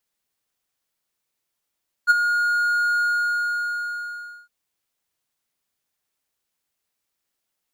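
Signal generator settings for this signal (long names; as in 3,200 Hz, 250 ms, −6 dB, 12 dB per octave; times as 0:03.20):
note with an ADSR envelope triangle 1,430 Hz, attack 34 ms, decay 22 ms, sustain −9 dB, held 0.94 s, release 1,470 ms −7 dBFS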